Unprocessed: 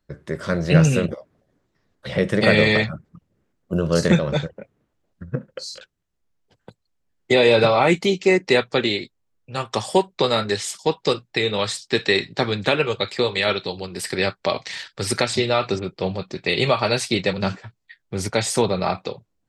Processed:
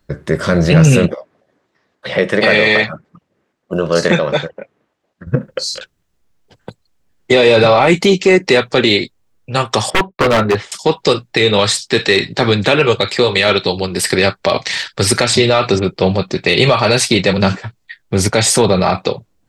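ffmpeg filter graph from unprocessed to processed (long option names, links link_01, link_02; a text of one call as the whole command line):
ffmpeg -i in.wav -filter_complex "[0:a]asettb=1/sr,asplit=3[link_01][link_02][link_03];[link_01]atrim=end=1.084[link_04];[link_02]atrim=start=1.08:end=5.27,asetpts=PTS-STARTPTS,afade=type=in:duration=0.004:curve=qsin,afade=type=out:start_time=4.186:duration=0.004:curve=qsin,highpass=frequency=620:poles=1,aemphasis=mode=reproduction:type=50kf,bandreject=frequency=1400:width=27[link_05];[link_03]atrim=start=5.266[link_06];[link_04][link_05]acrossfade=duration=0.004:curve1=hsin:curve2=qsin[link_07];[link_07][link_06]acrossfade=duration=0.004:curve1=qsin:curve2=hsin,asettb=1/sr,asplit=3[link_08][link_09][link_10];[link_08]atrim=end=9.904[link_11];[link_09]atrim=start=9.9:end=10.72,asetpts=PTS-STARTPTS,afade=type=in:duration=0.004:curve=qsin,afade=type=out:start_time=0.816:duration=0.004:curve=qsin,lowpass=1700,agate=range=-33dB:threshold=-43dB:ratio=3:release=100:detection=peak,aeval=exprs='0.126*(abs(mod(val(0)/0.126+3,4)-2)-1)':channel_layout=same[link_12];[link_10]atrim=start=10.716[link_13];[link_11][link_12]acrossfade=duration=0.004:curve1=hsin:curve2=qsin[link_14];[link_14][link_13]acrossfade=duration=0.004:curve1=qsin:curve2=hsin,acontrast=48,alimiter=level_in=7.5dB:limit=-1dB:release=50:level=0:latency=1,volume=-1dB" out.wav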